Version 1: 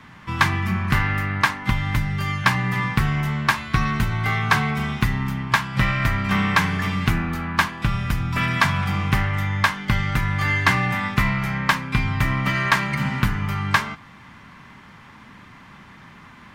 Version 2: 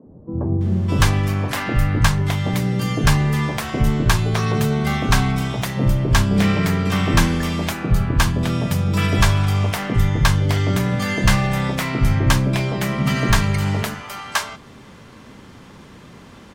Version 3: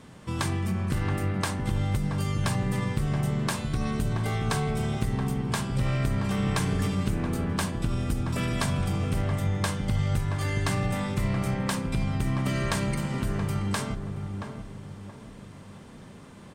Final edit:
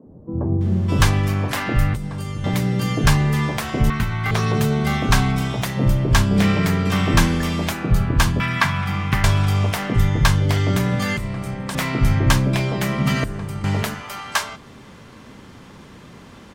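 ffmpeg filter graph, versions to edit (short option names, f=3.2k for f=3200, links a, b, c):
-filter_complex "[2:a]asplit=3[a][b][c];[0:a]asplit=2[d][e];[1:a]asplit=6[f][g][h][i][j][k];[f]atrim=end=1.942[l];[a]atrim=start=1.938:end=2.442[m];[g]atrim=start=2.438:end=3.902[n];[d]atrim=start=3.898:end=4.312[o];[h]atrim=start=4.308:end=8.402[p];[e]atrim=start=8.398:end=9.242[q];[i]atrim=start=9.238:end=11.172[r];[b]atrim=start=11.168:end=11.752[s];[j]atrim=start=11.748:end=13.242[t];[c]atrim=start=13.238:end=13.642[u];[k]atrim=start=13.638[v];[l][m]acrossfade=d=0.004:c1=hsin:c2=hsin[w];[w][n]acrossfade=d=0.004:c1=hsin:c2=hsin[x];[x][o]acrossfade=d=0.004:c1=hsin:c2=hsin[y];[y][p]acrossfade=d=0.004:c1=hsin:c2=hsin[z];[z][q]acrossfade=d=0.004:c1=hsin:c2=hsin[aa];[aa][r]acrossfade=d=0.004:c1=hsin:c2=hsin[ab];[ab][s]acrossfade=d=0.004:c1=hsin:c2=hsin[ac];[ac][t]acrossfade=d=0.004:c1=hsin:c2=hsin[ad];[ad][u]acrossfade=d=0.004:c1=hsin:c2=hsin[ae];[ae][v]acrossfade=d=0.004:c1=hsin:c2=hsin"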